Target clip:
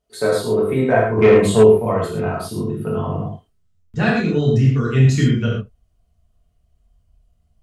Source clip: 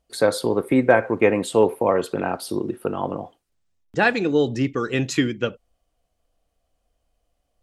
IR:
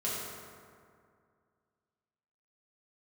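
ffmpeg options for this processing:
-filter_complex "[0:a]asubboost=boost=9:cutoff=150[s0];[1:a]atrim=start_sample=2205,atrim=end_sample=6174[s1];[s0][s1]afir=irnorm=-1:irlink=0,asplit=3[s2][s3][s4];[s2]afade=t=out:st=1.17:d=0.02[s5];[s3]acontrast=60,afade=t=in:st=1.17:d=0.02,afade=t=out:st=1.62:d=0.02[s6];[s4]afade=t=in:st=1.62:d=0.02[s7];[s5][s6][s7]amix=inputs=3:normalize=0,volume=0.668"

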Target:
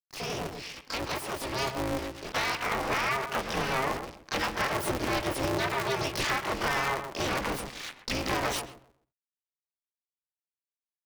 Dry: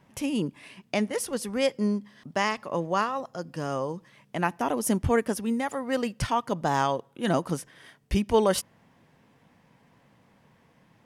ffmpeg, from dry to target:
-filter_complex "[0:a]aeval=exprs='(tanh(12.6*val(0)+0.35)-tanh(0.35))/12.6':c=same,acrusher=bits=7:mix=0:aa=0.000001,alimiter=level_in=1.26:limit=0.0631:level=0:latency=1:release=13,volume=0.794,agate=range=0.00891:threshold=0.00112:ratio=16:detection=peak,dynaudnorm=f=230:g=17:m=2.82,equalizer=f=1000:t=o:w=0.67:g=8,equalizer=f=2500:t=o:w=0.67:g=12,equalizer=f=6300:t=o:w=0.67:g=-11,acompressor=threshold=0.0631:ratio=12,aresample=22050,aresample=44100,asplit=3[s0][s1][s2];[s1]asetrate=55563,aresample=44100,atempo=0.793701,volume=0.562[s3];[s2]asetrate=88200,aresample=44100,atempo=0.5,volume=1[s4];[s0][s3][s4]amix=inputs=3:normalize=0,lowshelf=f=160:g=-9,asplit=2[s5][s6];[s6]adelay=128,lowpass=f=820:p=1,volume=0.562,asplit=2[s7][s8];[s8]adelay=128,lowpass=f=820:p=1,volume=0.31,asplit=2[s9][s10];[s10]adelay=128,lowpass=f=820:p=1,volume=0.31,asplit=2[s11][s12];[s12]adelay=128,lowpass=f=820:p=1,volume=0.31[s13];[s5][s7][s9][s11][s13]amix=inputs=5:normalize=0,aeval=exprs='val(0)*sgn(sin(2*PI*130*n/s))':c=same,volume=0.596"

